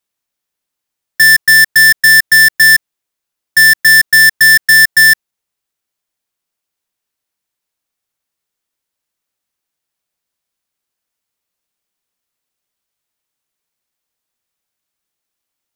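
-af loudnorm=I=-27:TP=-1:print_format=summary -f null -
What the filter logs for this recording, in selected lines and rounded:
Input Integrated:     -5.9 LUFS
Input True Peak:      -3.0 dBTP
Input LRA:             3.0 LU
Input Threshold:     -16.0 LUFS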